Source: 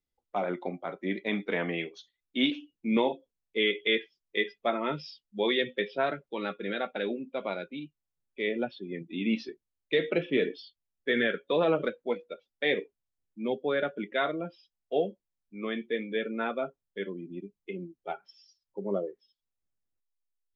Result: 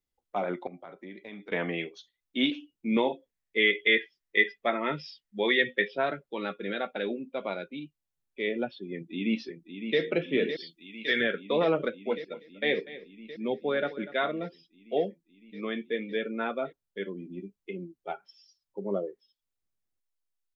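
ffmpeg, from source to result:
ffmpeg -i in.wav -filter_complex "[0:a]asettb=1/sr,asplit=3[link_01][link_02][link_03];[link_01]atrim=end=0.674[link_04];[link_02]atrim=start=0.67:end=1.52,asetpts=PTS-STARTPTS,afade=type=in:duration=0.004:curve=qsin,afade=type=out:start_time=0.846:duration=0.004:curve=qsin,acompressor=threshold=-42dB:ratio=4:attack=3.2:release=140:knee=1:detection=peak[link_05];[link_03]atrim=start=1.516[link_06];[link_04][link_05]acrossfade=duration=0.004:curve1=hsin:curve2=qsin[link_07];[link_07][link_06]acrossfade=duration=0.004:curve1=qsin:curve2=hsin,asettb=1/sr,asplit=3[link_08][link_09][link_10];[link_08]atrim=end=3.124[link_11];[link_09]atrim=start=3.12:end=5.88,asetpts=PTS-STARTPTS,afade=type=in:duration=0.004:curve=qsin,afade=type=out:start_time=2.756:duration=0.004:curve=qsin,equalizer=frequency=1900:width=3.3:gain=9.5[link_12];[link_10]atrim=start=5.876[link_13];[link_11][link_12]acrossfade=duration=0.004:curve1=hsin:curve2=qsin[link_14];[link_14][link_13]acrossfade=duration=0.004:curve1=qsin:curve2=hsin,asplit=2[link_15][link_16];[link_16]afade=type=in:start_time=8.94:duration=0.01,afade=type=out:start_time=10:duration=0.01,aecho=0:1:560|1120|1680|2240|2800|3360|3920|4480|5040|5600|6160|6720:0.375837|0.30067|0.240536|0.192429|0.153943|0.123154|0.0985235|0.0788188|0.0630551|0.050444|0.0403552|0.0322842[link_17];[link_15][link_17]amix=inputs=2:normalize=0,asettb=1/sr,asplit=3[link_18][link_19][link_20];[link_18]atrim=end=10.604[link_21];[link_19]atrim=start=10.6:end=11.21,asetpts=PTS-STARTPTS,afade=type=in:duration=0.004:curve=qsin,afade=type=out:start_time=0.606:duration=0.004:curve=qsin,tiltshelf=frequency=970:gain=-6[link_22];[link_20]atrim=start=11.206[link_23];[link_21][link_22]acrossfade=duration=0.004:curve1=hsin:curve2=qsin[link_24];[link_24][link_23]acrossfade=duration=0.004:curve1=qsin:curve2=hsin,asplit=3[link_25][link_26][link_27];[link_25]afade=type=out:start_time=12.08:duration=0.02[link_28];[link_26]aecho=1:1:243:0.15,afade=type=in:start_time=12.08:duration=0.02,afade=type=out:start_time=14.38:duration=0.02[link_29];[link_27]afade=type=in:start_time=14.38:duration=0.02[link_30];[link_28][link_29][link_30]amix=inputs=3:normalize=0,asettb=1/sr,asplit=3[link_31][link_32][link_33];[link_31]atrim=end=17.144[link_34];[link_32]atrim=start=17.14:end=17.56,asetpts=PTS-STARTPTS,afade=type=in:duration=0.004:curve=qsin,afade=type=out:start_time=0.416:duration=0.004:curve=qsin,asplit=2[link_35][link_36];[link_36]adelay=16,volume=-7dB[link_37];[link_35][link_37]amix=inputs=2:normalize=0,atrim=end_sample=18522[link_38];[link_33]atrim=start=17.556[link_39];[link_34][link_38]acrossfade=duration=0.004:curve1=hsin:curve2=qsin[link_40];[link_40][link_39]acrossfade=duration=0.004:curve1=qsin:curve2=hsin" out.wav

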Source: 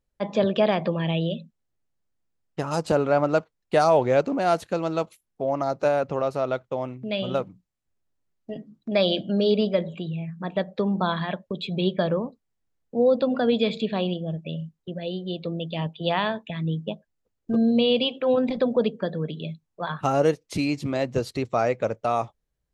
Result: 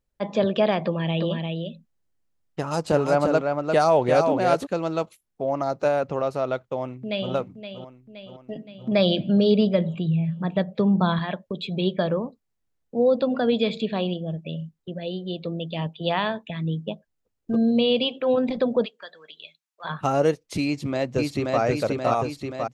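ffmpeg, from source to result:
ffmpeg -i in.wav -filter_complex "[0:a]asplit=3[link_01][link_02][link_03];[link_01]afade=type=out:start_time=1.16:duration=0.02[link_04];[link_02]aecho=1:1:348:0.596,afade=type=in:start_time=1.16:duration=0.02,afade=type=out:start_time=4.65:duration=0.02[link_05];[link_03]afade=type=in:start_time=4.65:duration=0.02[link_06];[link_04][link_05][link_06]amix=inputs=3:normalize=0,asplit=2[link_07][link_08];[link_08]afade=type=in:start_time=6.73:duration=0.01,afade=type=out:start_time=7.32:duration=0.01,aecho=0:1:520|1040|1560|2080|2600|3120|3640:0.316228|0.189737|0.113842|0.0683052|0.0409831|0.0245899|0.0147539[link_09];[link_07][link_09]amix=inputs=2:normalize=0,asettb=1/sr,asplit=3[link_10][link_11][link_12];[link_10]atrim=end=8.744[link_13];[link_11]atrim=start=8.74:end=11.19,asetpts=PTS-STARTPTS,afade=type=in:duration=0.004:curve=qsin,afade=type=out:start_time=2.446:duration=0.004:curve=qsin,equalizer=frequency=130:width=1.2:gain=11[link_14];[link_12]atrim=start=11.186[link_15];[link_13][link_14]acrossfade=duration=0.004:curve1=hsin:curve2=qsin[link_16];[link_16][link_15]acrossfade=duration=0.004:curve1=qsin:curve2=hsin,asplit=3[link_17][link_18][link_19];[link_17]afade=type=out:start_time=18.84:duration=0.02[link_20];[link_18]highpass=1400,afade=type=in:start_time=18.84:duration=0.02,afade=type=out:start_time=19.84:duration=0.02[link_21];[link_19]afade=type=in:start_time=19.84:duration=0.02[link_22];[link_20][link_21][link_22]amix=inputs=3:normalize=0,asplit=2[link_23][link_24];[link_24]afade=type=in:start_time=20.65:duration=0.01,afade=type=out:start_time=21.61:duration=0.01,aecho=0:1:530|1060|1590|2120|2650|3180|3710|4240|4770|5300|5830:0.841395|0.546907|0.355489|0.231068|0.150194|0.0976263|0.0634571|0.0412471|0.0268106|0.0174269|0.0113275[link_25];[link_23][link_25]amix=inputs=2:normalize=0" out.wav

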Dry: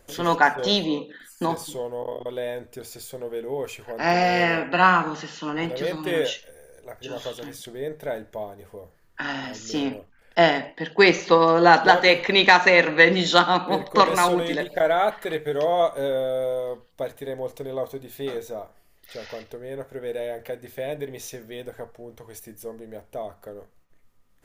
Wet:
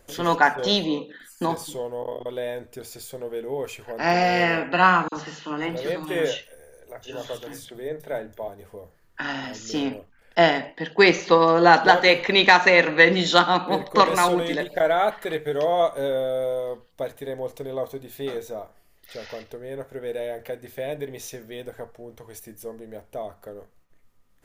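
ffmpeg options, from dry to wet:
ffmpeg -i in.wav -filter_complex "[0:a]asettb=1/sr,asplit=3[link_01][link_02][link_03];[link_01]atrim=end=5.084[link_04];[link_02]atrim=start=5.08:end=8.48,asetpts=PTS-STARTPTS,afade=type=in:duration=0.004:curve=qsin,afade=type=out:start_time=3.396:duration=0.004:curve=qsin,acrossover=split=190|4000[link_05][link_06][link_07];[link_06]adelay=40[link_08];[link_05]adelay=80[link_09];[link_09][link_08][link_07]amix=inputs=3:normalize=0,atrim=end_sample=149940[link_10];[link_03]atrim=start=8.476[link_11];[link_04][link_10]acrossfade=duration=0.004:curve1=hsin:curve2=qsin[link_12];[link_12][link_11]acrossfade=duration=0.004:curve1=qsin:curve2=hsin" out.wav

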